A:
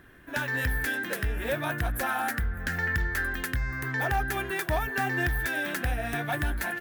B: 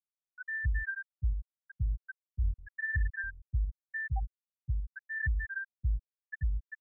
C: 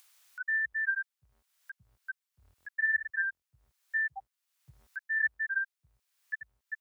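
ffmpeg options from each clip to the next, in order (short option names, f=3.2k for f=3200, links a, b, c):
-af "equalizer=f=550:w=0.95:g=-14,aeval=exprs='val(0)+0.01*sin(2*PI*5200*n/s)':c=same,afftfilt=real='re*gte(hypot(re,im),0.224)':imag='im*gte(hypot(re,im),0.224)':win_size=1024:overlap=0.75"
-af "highpass=1.1k,acompressor=mode=upward:threshold=-50dB:ratio=2.5,volume=7.5dB"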